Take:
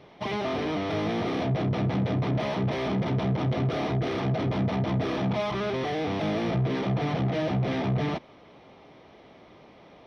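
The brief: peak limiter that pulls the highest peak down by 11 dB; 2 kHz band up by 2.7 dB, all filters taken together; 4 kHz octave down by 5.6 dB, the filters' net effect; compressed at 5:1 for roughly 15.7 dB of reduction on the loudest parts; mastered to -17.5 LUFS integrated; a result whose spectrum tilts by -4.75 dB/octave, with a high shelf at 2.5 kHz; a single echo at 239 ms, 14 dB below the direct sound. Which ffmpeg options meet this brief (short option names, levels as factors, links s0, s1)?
-af "equalizer=f=2000:t=o:g=6.5,highshelf=f=2500:g=-3.5,equalizer=f=4000:t=o:g=-7.5,acompressor=threshold=0.00891:ratio=5,alimiter=level_in=6.31:limit=0.0631:level=0:latency=1,volume=0.158,aecho=1:1:239:0.2,volume=29.9"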